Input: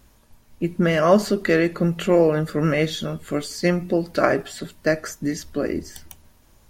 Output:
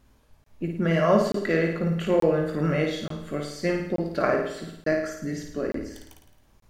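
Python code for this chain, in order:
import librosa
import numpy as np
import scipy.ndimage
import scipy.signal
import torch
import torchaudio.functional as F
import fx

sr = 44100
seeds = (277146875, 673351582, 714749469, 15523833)

p1 = fx.high_shelf(x, sr, hz=5400.0, db=-8.5)
p2 = fx.doubler(p1, sr, ms=19.0, db=-11.0)
p3 = p2 + fx.room_flutter(p2, sr, wall_m=9.3, rt60_s=0.72, dry=0)
p4 = fx.buffer_crackle(p3, sr, first_s=0.44, period_s=0.88, block=1024, kind='zero')
y = F.gain(torch.from_numpy(p4), -6.0).numpy()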